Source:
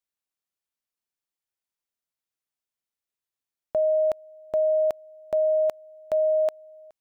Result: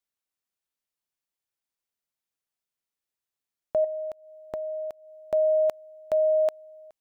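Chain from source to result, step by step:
0:03.84–0:05.28: downward compressor 12 to 1, threshold −31 dBFS, peak gain reduction 11 dB

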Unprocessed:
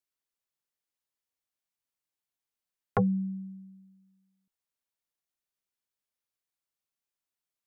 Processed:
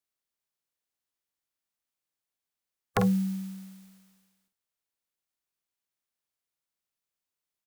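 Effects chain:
compressing power law on the bin magnitudes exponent 0.52
double-tracking delay 47 ms −7 dB

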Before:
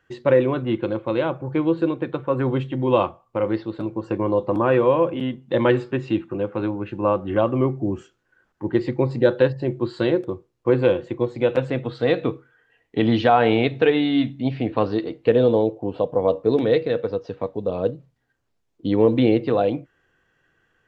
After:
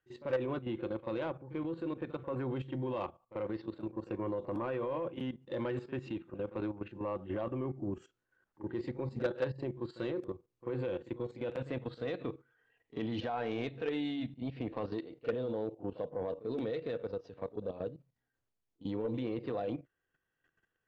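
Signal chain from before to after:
output level in coarse steps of 13 dB
soft clipping −17 dBFS, distortion −13 dB
echo ahead of the sound 41 ms −15.5 dB
level −8.5 dB

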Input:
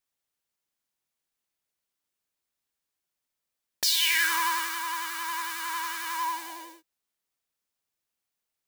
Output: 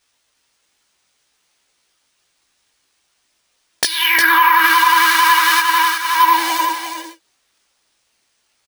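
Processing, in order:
treble cut that deepens with the level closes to 1,300 Hz, closed at −22 dBFS
0:05.60–0:06.23: downward expander −27 dBFS
spectral tilt +1.5 dB per octave
in parallel at −2 dB: downward compressor, threshold −34 dBFS, peak gain reduction 10 dB
on the sum: multi-voice chorus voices 6, 0.55 Hz, delay 17 ms, depth 2.1 ms
bad sample-rate conversion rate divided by 3×, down filtered, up hold
on a send: single-tap delay 357 ms −7 dB
on the sum: boost into a limiter +21.5 dB
every ending faded ahead of time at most 310 dB per second
level −2 dB

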